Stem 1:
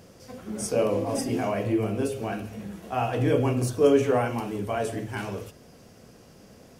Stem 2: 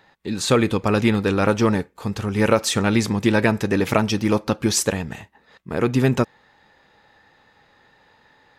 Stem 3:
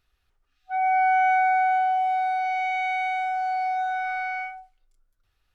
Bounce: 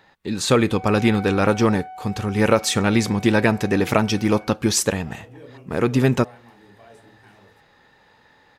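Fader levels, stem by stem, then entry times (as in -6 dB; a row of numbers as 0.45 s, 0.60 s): -20.0 dB, +0.5 dB, -15.0 dB; 2.10 s, 0.00 s, 0.00 s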